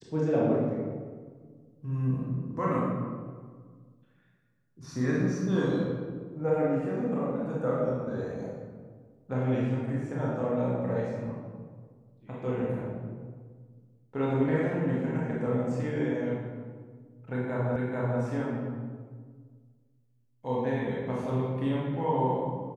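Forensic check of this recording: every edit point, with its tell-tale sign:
17.76 repeat of the last 0.44 s

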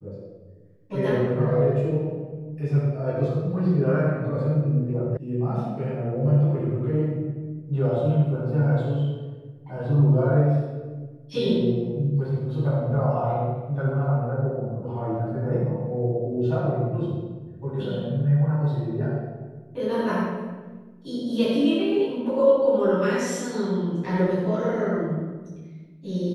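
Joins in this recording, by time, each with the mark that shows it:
5.17 sound cut off

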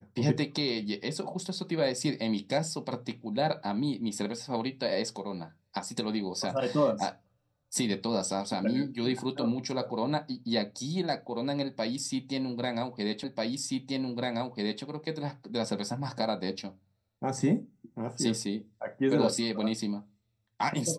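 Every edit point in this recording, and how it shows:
13.24 repeat of the last 1.59 s

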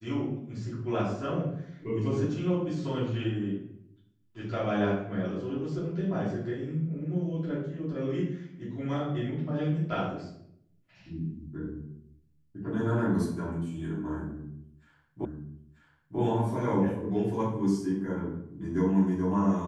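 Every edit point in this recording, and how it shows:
15.25 repeat of the last 0.94 s

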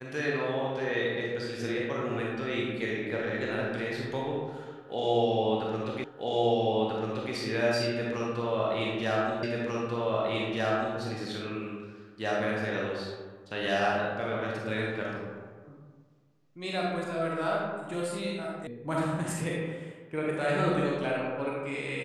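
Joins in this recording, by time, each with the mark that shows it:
6.04 repeat of the last 1.29 s
9.43 repeat of the last 1.54 s
18.67 sound cut off

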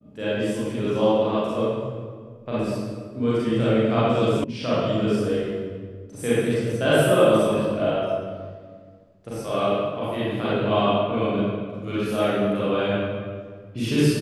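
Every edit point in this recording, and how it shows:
4.44 sound cut off

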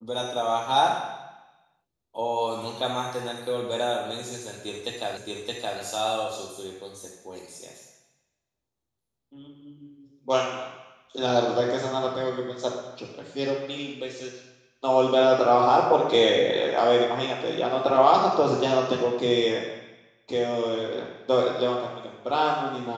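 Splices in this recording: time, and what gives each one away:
5.17 repeat of the last 0.62 s

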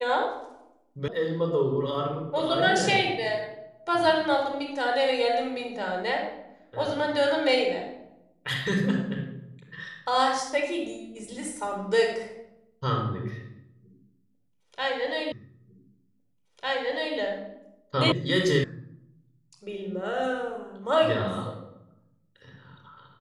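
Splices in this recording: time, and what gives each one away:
1.08 sound cut off
15.32 repeat of the last 1.85 s
18.12 sound cut off
18.64 sound cut off

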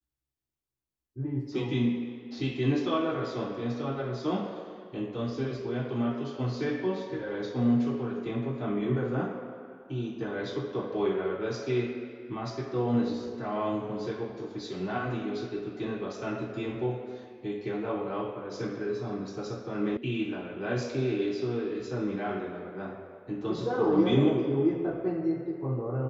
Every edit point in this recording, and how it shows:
19.97 sound cut off

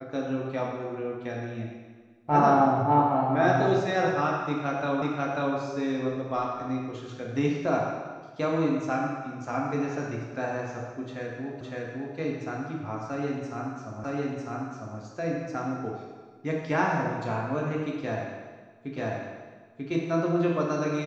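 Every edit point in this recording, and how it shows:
5.02 repeat of the last 0.54 s
11.61 repeat of the last 0.56 s
14.04 repeat of the last 0.95 s
18.97 repeat of the last 0.94 s

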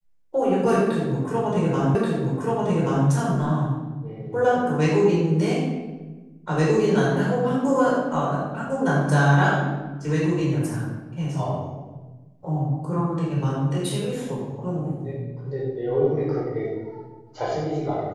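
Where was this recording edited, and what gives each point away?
1.95 repeat of the last 1.13 s

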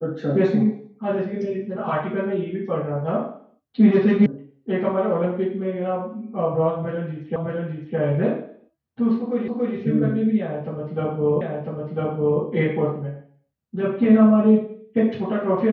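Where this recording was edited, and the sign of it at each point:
4.26 sound cut off
7.36 repeat of the last 0.61 s
9.48 repeat of the last 0.28 s
11.41 repeat of the last 1 s

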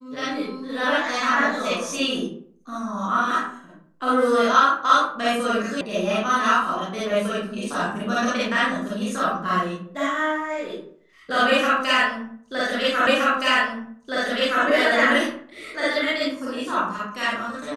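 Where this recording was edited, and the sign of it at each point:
5.81 sound cut off
13.07 repeat of the last 1.57 s

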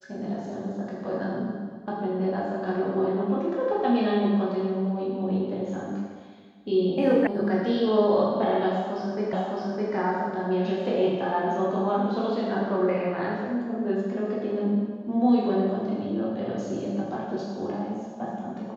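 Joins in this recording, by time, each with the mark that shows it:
7.27 sound cut off
9.33 repeat of the last 0.61 s

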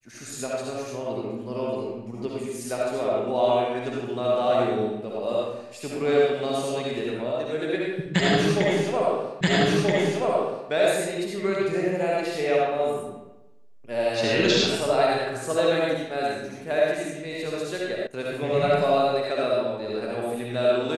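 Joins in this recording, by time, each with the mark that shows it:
9.41 repeat of the last 1.28 s
18.07 sound cut off

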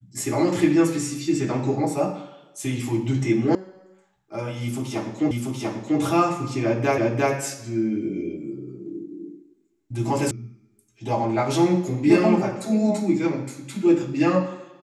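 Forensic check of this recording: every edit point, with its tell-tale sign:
3.55 sound cut off
5.31 repeat of the last 0.69 s
6.98 repeat of the last 0.35 s
10.31 sound cut off

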